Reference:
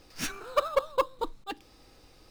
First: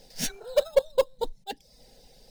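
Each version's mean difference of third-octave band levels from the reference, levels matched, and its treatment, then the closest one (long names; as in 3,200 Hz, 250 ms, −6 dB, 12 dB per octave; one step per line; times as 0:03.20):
5.5 dB: reverb reduction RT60 0.55 s
parametric band 2,500 Hz −7.5 dB 0.38 octaves
phaser with its sweep stopped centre 320 Hz, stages 6
level +6 dB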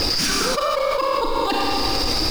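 14.5 dB: spectral magnitudes quantised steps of 15 dB
parametric band 4,900 Hz +13 dB 0.28 octaves
four-comb reverb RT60 1.5 s, combs from 28 ms, DRR 4.5 dB
envelope flattener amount 100%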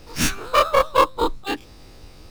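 3.5 dB: every bin's largest magnitude spread in time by 60 ms
low-shelf EQ 120 Hz +10 dB
harmonic and percussive parts rebalanced percussive +9 dB
on a send: backwards echo 1,120 ms −23 dB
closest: third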